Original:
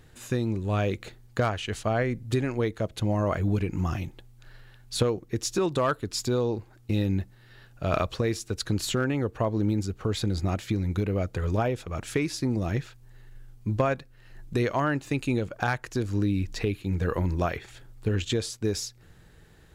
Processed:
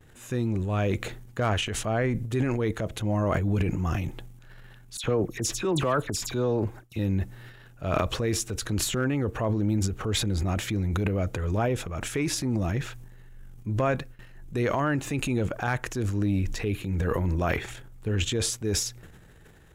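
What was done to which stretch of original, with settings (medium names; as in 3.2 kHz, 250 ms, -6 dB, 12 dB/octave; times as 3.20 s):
4.97–6.99 s: phase dispersion lows, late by 68 ms, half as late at 2.6 kHz
whole clip: gate with hold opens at -45 dBFS; peaking EQ 4.5 kHz -7 dB 0.5 oct; transient shaper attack -4 dB, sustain +10 dB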